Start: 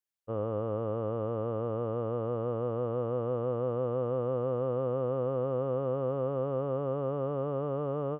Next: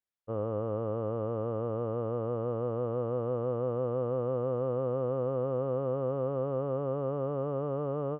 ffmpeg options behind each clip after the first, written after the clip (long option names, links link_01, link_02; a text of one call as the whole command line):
ffmpeg -i in.wav -af "lowpass=frequency=2300:poles=1" out.wav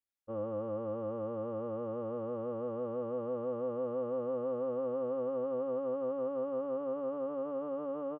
ffmpeg -i in.wav -af "aecho=1:1:3.6:0.95,volume=-7dB" out.wav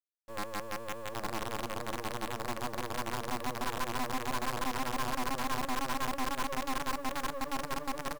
ffmpeg -i in.wav -af "aecho=1:1:840:0.596,acrusher=bits=6:dc=4:mix=0:aa=0.000001,aeval=exprs='abs(val(0))':channel_layout=same" out.wav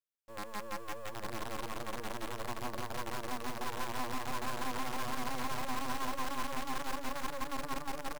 ffmpeg -i in.wav -af "aecho=1:1:170|340|510|680|850|1020:0.596|0.274|0.126|0.058|0.0267|0.0123,volume=-5dB" out.wav